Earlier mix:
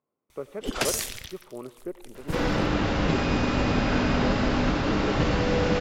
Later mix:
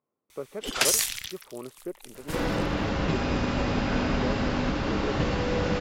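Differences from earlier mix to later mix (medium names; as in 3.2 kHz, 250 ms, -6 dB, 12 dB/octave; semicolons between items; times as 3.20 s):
first sound: add tilt shelf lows -6.5 dB, about 820 Hz; reverb: off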